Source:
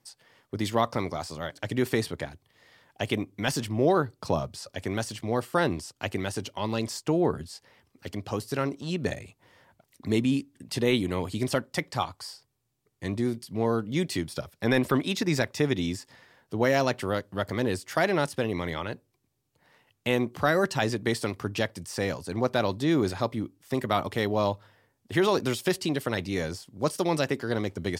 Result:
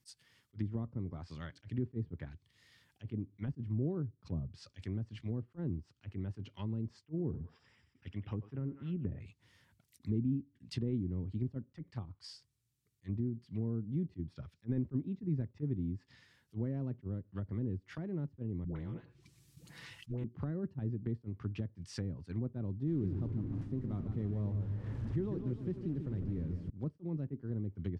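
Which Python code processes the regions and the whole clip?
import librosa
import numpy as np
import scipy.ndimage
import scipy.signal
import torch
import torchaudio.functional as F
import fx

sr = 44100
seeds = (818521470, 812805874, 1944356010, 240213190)

y = fx.chain(x, sr, fx.savgol(points=25),
    fx.echo_thinned(ms=91, feedback_pct=59, hz=640.0, wet_db=-11), at=(7.04, 9.2))
y = fx.chain(y, sr, fx.comb(ms=6.0, depth=0.51),
    fx.dispersion(late='highs', ms=121.0, hz=490.0),
    fx.spectral_comp(ratio=2.0), at=(18.64, 20.24))
y = fx.chain(y, sr, fx.delta_mod(bps=64000, step_db=-26.5),
    fx.high_shelf(hz=5700.0, db=9.0),
    fx.echo_warbled(ms=151, feedback_pct=49, rate_hz=2.8, cents=138, wet_db=-7.5), at=(22.87, 26.7))
y = fx.env_lowpass_down(y, sr, base_hz=410.0, full_db=-25.0)
y = fx.tone_stack(y, sr, knobs='6-0-2')
y = fx.attack_slew(y, sr, db_per_s=500.0)
y = y * 10.0 ** (11.0 / 20.0)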